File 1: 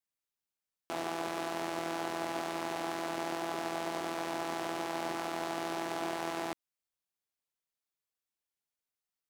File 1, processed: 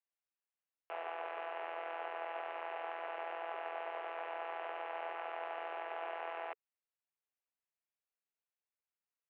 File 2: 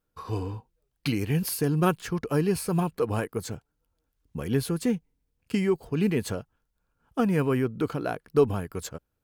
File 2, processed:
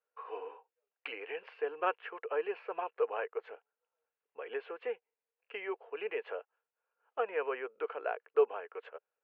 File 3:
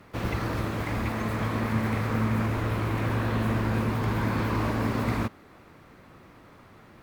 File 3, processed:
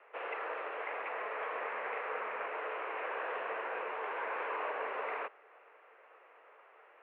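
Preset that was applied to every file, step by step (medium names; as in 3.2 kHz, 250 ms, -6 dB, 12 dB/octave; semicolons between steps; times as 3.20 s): Chebyshev band-pass 440–2800 Hz, order 4; trim -4 dB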